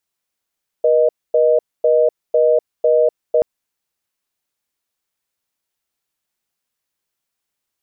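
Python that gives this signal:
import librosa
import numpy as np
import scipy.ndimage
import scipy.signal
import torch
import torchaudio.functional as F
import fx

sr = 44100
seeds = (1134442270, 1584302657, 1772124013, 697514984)

y = fx.call_progress(sr, length_s=2.58, kind='reorder tone', level_db=-13.0)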